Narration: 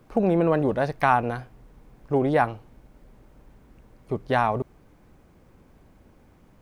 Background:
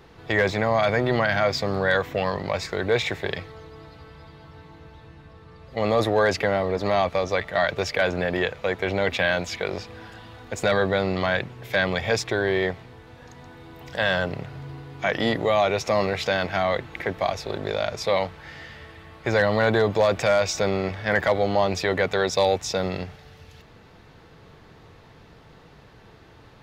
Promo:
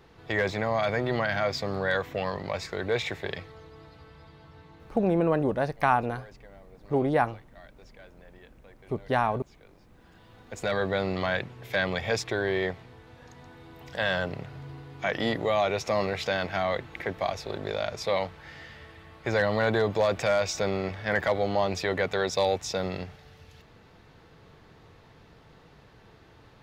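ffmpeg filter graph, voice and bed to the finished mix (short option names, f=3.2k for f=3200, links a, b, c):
-filter_complex "[0:a]adelay=4800,volume=-3dB[a];[1:a]volume=19.5dB,afade=t=out:st=5.16:d=0.25:silence=0.0630957,afade=t=in:st=9.86:d=1.14:silence=0.0562341[b];[a][b]amix=inputs=2:normalize=0"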